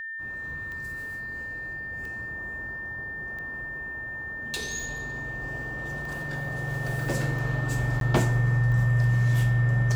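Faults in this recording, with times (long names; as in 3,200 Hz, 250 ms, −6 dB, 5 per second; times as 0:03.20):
scratch tick 45 rpm −28 dBFS
whistle 1,800 Hz −33 dBFS
0:08.00–0:08.01: drop-out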